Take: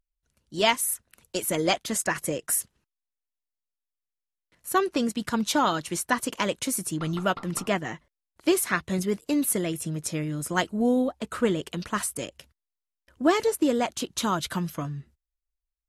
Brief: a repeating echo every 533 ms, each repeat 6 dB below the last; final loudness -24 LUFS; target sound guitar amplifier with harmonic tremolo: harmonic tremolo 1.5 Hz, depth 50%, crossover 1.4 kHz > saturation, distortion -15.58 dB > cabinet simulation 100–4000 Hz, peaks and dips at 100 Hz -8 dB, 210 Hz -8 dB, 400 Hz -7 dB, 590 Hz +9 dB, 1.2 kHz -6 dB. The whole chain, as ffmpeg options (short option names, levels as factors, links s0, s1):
-filter_complex "[0:a]aecho=1:1:533|1066|1599|2132|2665|3198:0.501|0.251|0.125|0.0626|0.0313|0.0157,acrossover=split=1400[s0][s1];[s0]aeval=exprs='val(0)*(1-0.5/2+0.5/2*cos(2*PI*1.5*n/s))':c=same[s2];[s1]aeval=exprs='val(0)*(1-0.5/2-0.5/2*cos(2*PI*1.5*n/s))':c=same[s3];[s2][s3]amix=inputs=2:normalize=0,asoftclip=threshold=0.119,highpass=100,equalizer=f=100:t=q:w=4:g=-8,equalizer=f=210:t=q:w=4:g=-8,equalizer=f=400:t=q:w=4:g=-7,equalizer=f=590:t=q:w=4:g=9,equalizer=f=1200:t=q:w=4:g=-6,lowpass=f=4000:w=0.5412,lowpass=f=4000:w=1.3066,volume=2.51"